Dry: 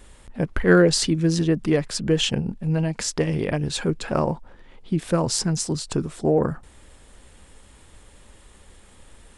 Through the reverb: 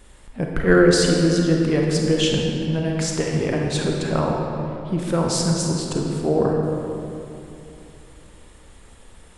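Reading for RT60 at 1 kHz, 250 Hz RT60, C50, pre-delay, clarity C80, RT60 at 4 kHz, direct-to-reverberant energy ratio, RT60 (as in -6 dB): 2.9 s, 3.3 s, 0.5 dB, 30 ms, 2.0 dB, 1.8 s, -0.5 dB, 3.0 s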